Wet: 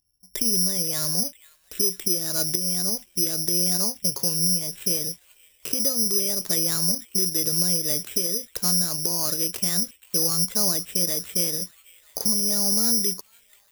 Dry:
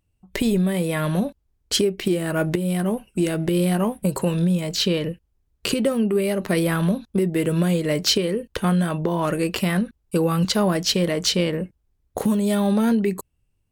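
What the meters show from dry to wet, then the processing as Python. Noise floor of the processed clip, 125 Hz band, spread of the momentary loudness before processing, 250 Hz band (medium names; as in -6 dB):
-60 dBFS, -11.5 dB, 6 LU, -11.5 dB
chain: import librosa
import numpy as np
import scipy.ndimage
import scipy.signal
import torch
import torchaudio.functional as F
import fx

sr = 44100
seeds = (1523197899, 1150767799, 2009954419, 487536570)

y = fx.echo_wet_highpass(x, sr, ms=488, feedback_pct=74, hz=2700.0, wet_db=-11)
y = (np.kron(scipy.signal.resample_poly(y, 1, 8), np.eye(8)[0]) * 8)[:len(y)]
y = F.gain(torch.from_numpy(y), -11.5).numpy()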